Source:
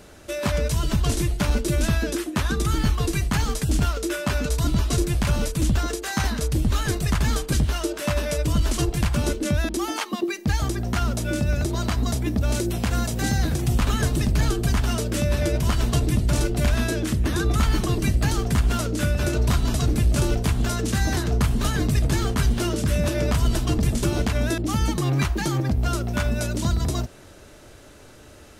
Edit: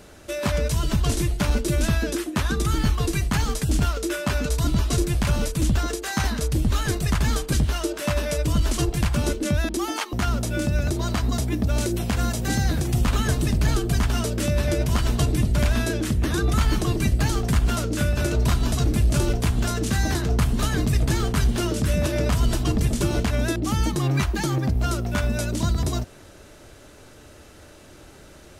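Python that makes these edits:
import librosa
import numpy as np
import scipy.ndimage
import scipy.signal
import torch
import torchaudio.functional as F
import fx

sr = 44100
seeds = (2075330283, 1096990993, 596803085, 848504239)

y = fx.edit(x, sr, fx.cut(start_s=10.13, length_s=0.74),
    fx.cut(start_s=16.33, length_s=0.28), tone=tone)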